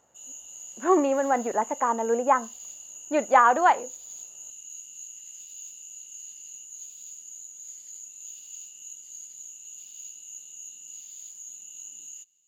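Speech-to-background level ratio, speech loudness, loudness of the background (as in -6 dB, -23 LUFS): 16.5 dB, -23.5 LUFS, -40.0 LUFS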